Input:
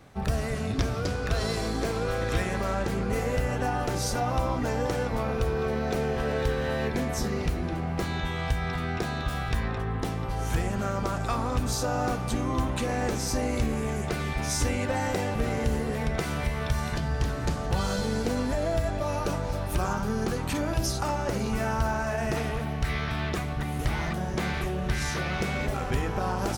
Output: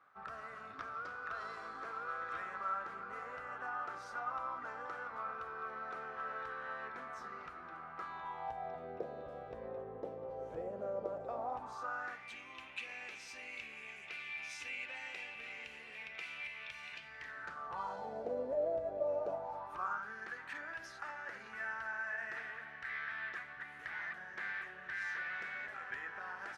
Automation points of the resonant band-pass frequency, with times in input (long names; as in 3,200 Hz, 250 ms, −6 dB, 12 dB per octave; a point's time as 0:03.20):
resonant band-pass, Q 5.7
0:07.99 1,300 Hz
0:08.95 530 Hz
0:11.26 530 Hz
0:12.36 2,500 Hz
0:17.02 2,500 Hz
0:18.35 550 Hz
0:19.15 550 Hz
0:20.14 1,700 Hz